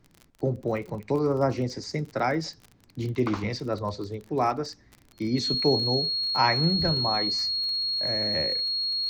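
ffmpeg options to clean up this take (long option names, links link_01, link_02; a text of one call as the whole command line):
ffmpeg -i in.wav -af "adeclick=threshold=4,bandreject=frequency=4300:width=30,agate=range=-21dB:threshold=-49dB" out.wav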